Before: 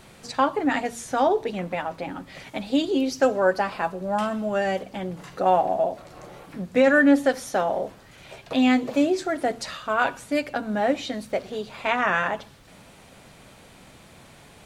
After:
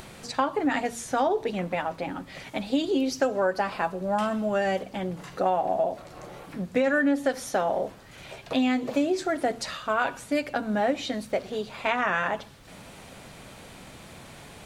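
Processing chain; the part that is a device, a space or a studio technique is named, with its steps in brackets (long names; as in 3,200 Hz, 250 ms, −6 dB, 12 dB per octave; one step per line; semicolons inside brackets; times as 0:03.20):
upward and downward compression (upward compression, threshold −39 dBFS; downward compressor 6 to 1, threshold −20 dBFS, peak gain reduction 8 dB)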